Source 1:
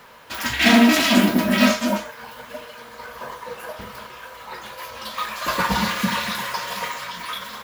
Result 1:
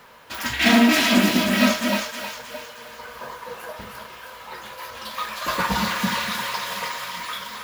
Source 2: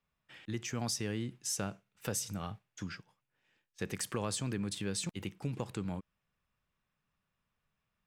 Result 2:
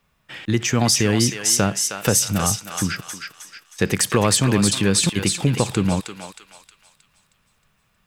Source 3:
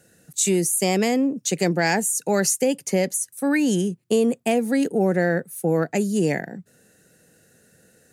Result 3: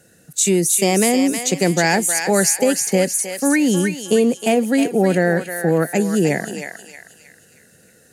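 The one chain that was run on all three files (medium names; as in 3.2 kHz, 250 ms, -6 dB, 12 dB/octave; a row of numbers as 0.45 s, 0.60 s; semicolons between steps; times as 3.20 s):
thinning echo 314 ms, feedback 47%, high-pass 1.2 kHz, level -4 dB; peak normalisation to -3 dBFS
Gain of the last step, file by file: -2.0 dB, +18.0 dB, +4.0 dB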